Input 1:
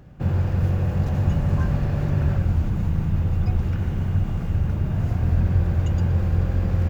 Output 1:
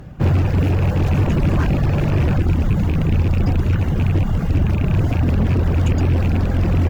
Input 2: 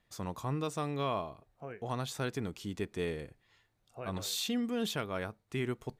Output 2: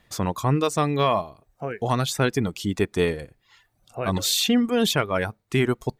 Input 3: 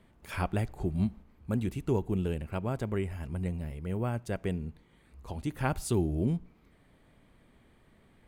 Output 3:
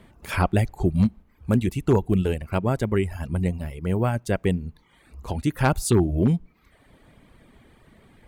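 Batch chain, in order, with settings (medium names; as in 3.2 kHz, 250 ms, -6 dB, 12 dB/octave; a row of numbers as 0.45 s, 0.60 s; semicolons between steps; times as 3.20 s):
rattle on loud lows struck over -19 dBFS, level -28 dBFS; valve stage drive 15 dB, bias 0.2; wavefolder -20 dBFS; reverb removal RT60 0.74 s; peak normalisation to -9 dBFS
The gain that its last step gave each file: +11.0 dB, +14.5 dB, +11.0 dB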